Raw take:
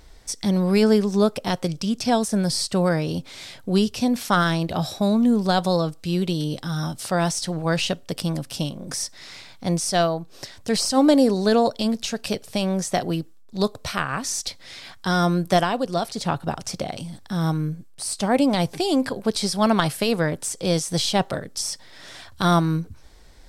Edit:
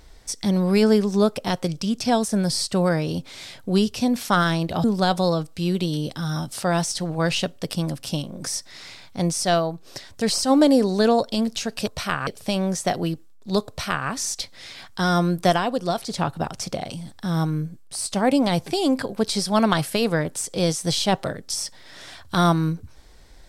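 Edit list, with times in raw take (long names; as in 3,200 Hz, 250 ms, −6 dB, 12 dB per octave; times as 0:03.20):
0:04.84–0:05.31: remove
0:13.75–0:14.15: duplicate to 0:12.34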